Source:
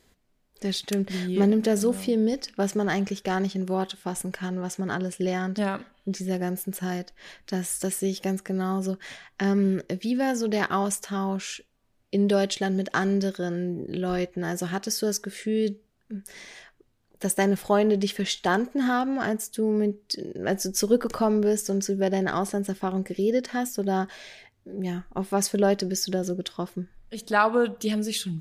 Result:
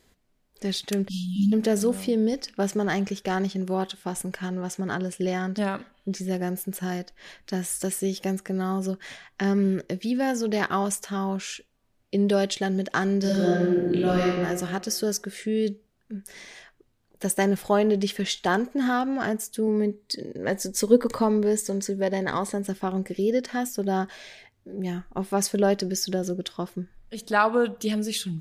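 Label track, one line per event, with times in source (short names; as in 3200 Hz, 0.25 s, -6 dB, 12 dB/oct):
1.090000	1.530000	spectral delete 320–2600 Hz
13.190000	14.320000	reverb throw, RT60 1.5 s, DRR -5.5 dB
19.670000	22.640000	ripple EQ crests per octave 1, crest to trough 8 dB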